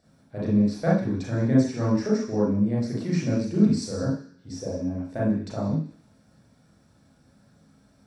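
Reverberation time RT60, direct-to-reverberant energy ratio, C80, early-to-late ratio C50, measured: 0.50 s, -7.0 dB, 7.5 dB, 2.0 dB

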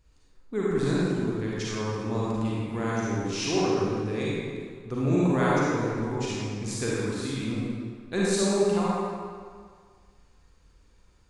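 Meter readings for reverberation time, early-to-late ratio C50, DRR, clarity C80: 1.9 s, -5.0 dB, -7.0 dB, -2.5 dB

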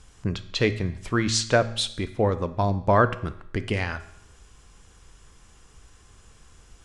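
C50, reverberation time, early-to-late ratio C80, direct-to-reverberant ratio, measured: 14.0 dB, 0.75 s, 17.0 dB, 10.0 dB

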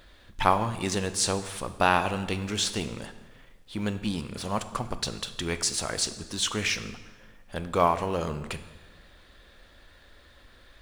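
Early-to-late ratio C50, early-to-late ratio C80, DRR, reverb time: 12.5 dB, 14.5 dB, 10.5 dB, 1.3 s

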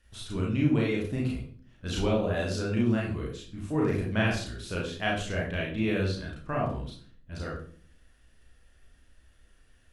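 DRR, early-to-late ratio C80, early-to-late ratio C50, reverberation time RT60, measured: -3.5 dB, 9.0 dB, 4.0 dB, 0.50 s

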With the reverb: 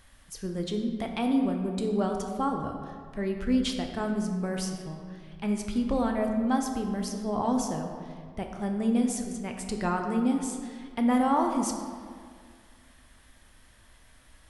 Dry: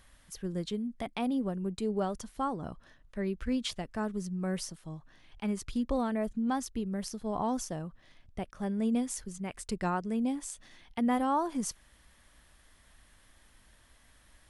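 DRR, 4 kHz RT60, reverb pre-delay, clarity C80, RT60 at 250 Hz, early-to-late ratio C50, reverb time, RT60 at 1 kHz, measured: 3.0 dB, 1.1 s, 5 ms, 6.0 dB, 2.2 s, 5.0 dB, 2.0 s, 2.0 s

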